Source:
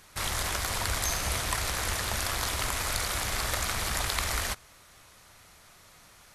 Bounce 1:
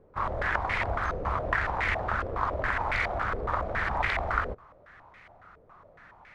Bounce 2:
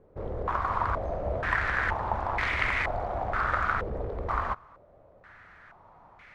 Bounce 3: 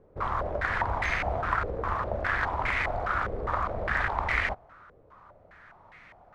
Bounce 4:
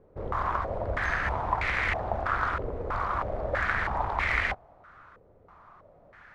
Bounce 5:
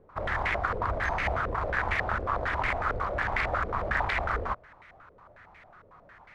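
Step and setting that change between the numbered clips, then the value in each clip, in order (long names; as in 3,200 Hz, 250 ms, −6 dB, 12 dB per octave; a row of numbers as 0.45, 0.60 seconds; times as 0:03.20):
low-pass on a step sequencer, speed: 7.2, 2.1, 4.9, 3.1, 11 Hertz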